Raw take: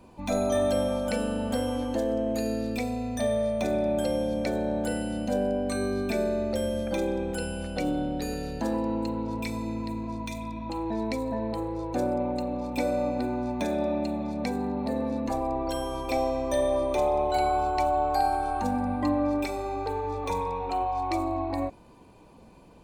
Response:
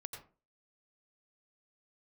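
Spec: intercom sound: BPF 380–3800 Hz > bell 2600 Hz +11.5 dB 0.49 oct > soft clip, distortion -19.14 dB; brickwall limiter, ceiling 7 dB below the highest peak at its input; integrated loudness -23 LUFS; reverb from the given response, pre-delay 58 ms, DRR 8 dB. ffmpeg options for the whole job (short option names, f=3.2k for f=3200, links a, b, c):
-filter_complex "[0:a]alimiter=limit=-20.5dB:level=0:latency=1,asplit=2[a][b];[1:a]atrim=start_sample=2205,adelay=58[c];[b][c]afir=irnorm=-1:irlink=0,volume=-5dB[d];[a][d]amix=inputs=2:normalize=0,highpass=380,lowpass=3.8k,equalizer=f=2.6k:t=o:w=0.49:g=11.5,asoftclip=threshold=-23.5dB,volume=9.5dB"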